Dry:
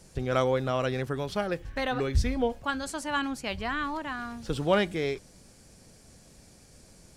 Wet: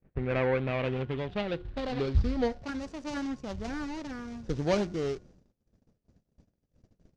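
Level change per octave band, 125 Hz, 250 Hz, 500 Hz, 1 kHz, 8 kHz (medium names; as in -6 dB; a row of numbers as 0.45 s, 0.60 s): -0.5 dB, -0.5 dB, -2.5 dB, -7.0 dB, -8.0 dB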